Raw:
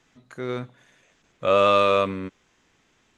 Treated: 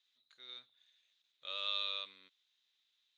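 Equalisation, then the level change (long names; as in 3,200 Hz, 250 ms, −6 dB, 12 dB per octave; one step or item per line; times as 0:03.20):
resonant band-pass 3,800 Hz, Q 8.6
0.0 dB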